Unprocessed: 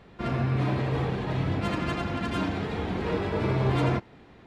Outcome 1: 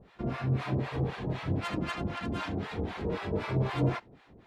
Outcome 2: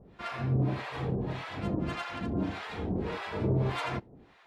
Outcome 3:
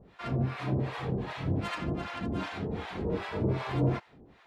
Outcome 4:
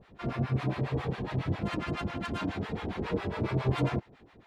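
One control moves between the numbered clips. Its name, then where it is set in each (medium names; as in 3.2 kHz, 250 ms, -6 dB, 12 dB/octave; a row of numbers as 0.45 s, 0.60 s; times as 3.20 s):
harmonic tremolo, rate: 3.9 Hz, 1.7 Hz, 2.6 Hz, 7.3 Hz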